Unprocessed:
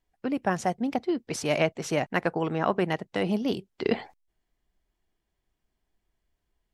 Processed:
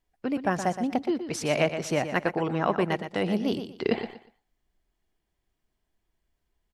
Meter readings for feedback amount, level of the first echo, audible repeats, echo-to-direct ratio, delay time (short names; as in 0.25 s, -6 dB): 24%, -9.5 dB, 3, -9.0 dB, 0.12 s